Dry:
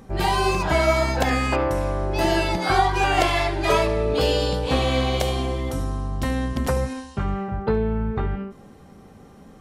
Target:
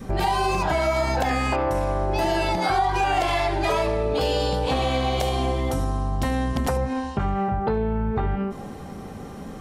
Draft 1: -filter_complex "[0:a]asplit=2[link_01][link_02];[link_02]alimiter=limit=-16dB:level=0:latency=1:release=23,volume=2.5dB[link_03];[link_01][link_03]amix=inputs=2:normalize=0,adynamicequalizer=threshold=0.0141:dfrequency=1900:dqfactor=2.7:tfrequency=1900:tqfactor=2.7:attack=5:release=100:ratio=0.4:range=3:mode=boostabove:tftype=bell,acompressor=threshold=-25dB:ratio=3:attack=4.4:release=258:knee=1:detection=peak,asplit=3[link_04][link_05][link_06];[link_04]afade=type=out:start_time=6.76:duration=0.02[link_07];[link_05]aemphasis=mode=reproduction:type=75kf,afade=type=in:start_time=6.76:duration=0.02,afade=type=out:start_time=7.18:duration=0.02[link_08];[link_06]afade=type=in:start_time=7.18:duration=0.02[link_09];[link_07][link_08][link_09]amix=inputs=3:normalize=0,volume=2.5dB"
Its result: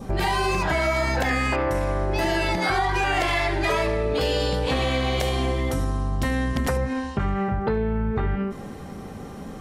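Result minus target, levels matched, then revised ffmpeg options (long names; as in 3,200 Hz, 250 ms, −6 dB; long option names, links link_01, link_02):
2,000 Hz band +4.0 dB
-filter_complex "[0:a]asplit=2[link_01][link_02];[link_02]alimiter=limit=-16dB:level=0:latency=1:release=23,volume=2.5dB[link_03];[link_01][link_03]amix=inputs=2:normalize=0,adynamicequalizer=threshold=0.0141:dfrequency=780:dqfactor=2.7:tfrequency=780:tqfactor=2.7:attack=5:release=100:ratio=0.4:range=3:mode=boostabove:tftype=bell,acompressor=threshold=-25dB:ratio=3:attack=4.4:release=258:knee=1:detection=peak,asplit=3[link_04][link_05][link_06];[link_04]afade=type=out:start_time=6.76:duration=0.02[link_07];[link_05]aemphasis=mode=reproduction:type=75kf,afade=type=in:start_time=6.76:duration=0.02,afade=type=out:start_time=7.18:duration=0.02[link_08];[link_06]afade=type=in:start_time=7.18:duration=0.02[link_09];[link_07][link_08][link_09]amix=inputs=3:normalize=0,volume=2.5dB"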